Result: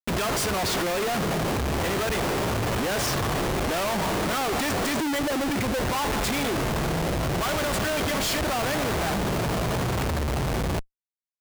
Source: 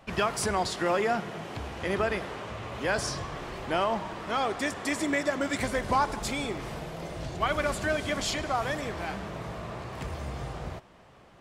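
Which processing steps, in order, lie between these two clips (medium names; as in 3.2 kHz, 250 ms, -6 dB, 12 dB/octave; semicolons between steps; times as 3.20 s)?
4.94–5.80 s: spectral contrast enhancement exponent 1.8; Schmitt trigger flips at -40.5 dBFS; trim +5.5 dB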